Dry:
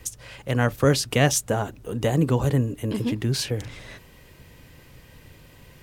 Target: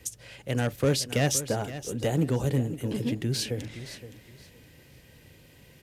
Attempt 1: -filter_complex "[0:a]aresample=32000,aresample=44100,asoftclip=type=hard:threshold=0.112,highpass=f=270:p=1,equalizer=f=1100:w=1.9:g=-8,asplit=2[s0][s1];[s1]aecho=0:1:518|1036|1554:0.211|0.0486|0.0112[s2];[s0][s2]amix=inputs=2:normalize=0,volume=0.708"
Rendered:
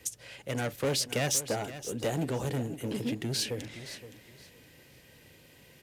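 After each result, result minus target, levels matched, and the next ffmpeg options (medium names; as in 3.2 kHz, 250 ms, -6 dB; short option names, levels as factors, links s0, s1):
hard clipper: distortion +8 dB; 125 Hz band -3.5 dB
-filter_complex "[0:a]aresample=32000,aresample=44100,asoftclip=type=hard:threshold=0.224,highpass=f=270:p=1,equalizer=f=1100:w=1.9:g=-8,asplit=2[s0][s1];[s1]aecho=0:1:518|1036|1554:0.211|0.0486|0.0112[s2];[s0][s2]amix=inputs=2:normalize=0,volume=0.708"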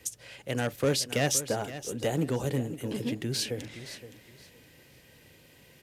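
125 Hz band -3.5 dB
-filter_complex "[0:a]aresample=32000,aresample=44100,asoftclip=type=hard:threshold=0.224,highpass=f=90:p=1,equalizer=f=1100:w=1.9:g=-8,asplit=2[s0][s1];[s1]aecho=0:1:518|1036|1554:0.211|0.0486|0.0112[s2];[s0][s2]amix=inputs=2:normalize=0,volume=0.708"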